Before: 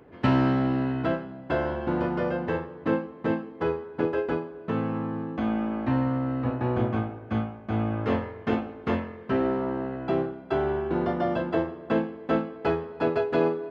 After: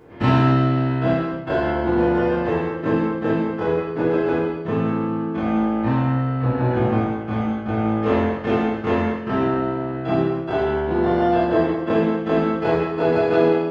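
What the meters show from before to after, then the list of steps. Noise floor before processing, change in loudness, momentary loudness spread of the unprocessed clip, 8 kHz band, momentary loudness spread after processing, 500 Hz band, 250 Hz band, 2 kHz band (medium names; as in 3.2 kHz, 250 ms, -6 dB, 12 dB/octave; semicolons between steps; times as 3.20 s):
-44 dBFS, +7.0 dB, 6 LU, no reading, 5 LU, +7.0 dB, +6.5 dB, +6.5 dB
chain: every event in the spectrogram widened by 60 ms; gated-style reverb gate 340 ms falling, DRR -4.5 dB; trim -2 dB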